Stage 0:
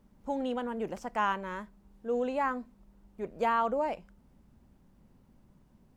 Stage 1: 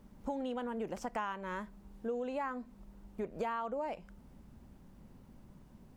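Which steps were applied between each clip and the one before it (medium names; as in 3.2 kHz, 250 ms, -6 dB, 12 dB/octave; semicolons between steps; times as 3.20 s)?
compression 6:1, threshold -40 dBFS, peak gain reduction 15.5 dB; trim +5 dB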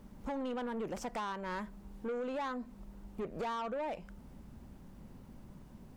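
saturation -37 dBFS, distortion -11 dB; trim +4 dB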